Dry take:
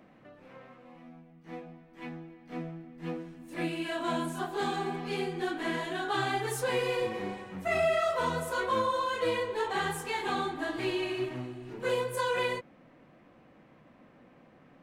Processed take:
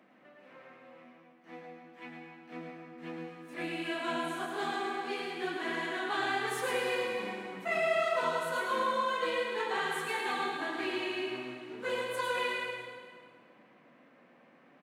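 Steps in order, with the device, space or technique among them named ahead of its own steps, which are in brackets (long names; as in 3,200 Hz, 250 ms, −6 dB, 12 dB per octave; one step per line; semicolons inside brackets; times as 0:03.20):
PA in a hall (high-pass filter 180 Hz 24 dB per octave; parametric band 2,000 Hz +5.5 dB 2.2 octaves; single-tap delay 107 ms −6.5 dB; convolution reverb RT60 1.9 s, pre-delay 92 ms, DRR 3.5 dB)
level −6.5 dB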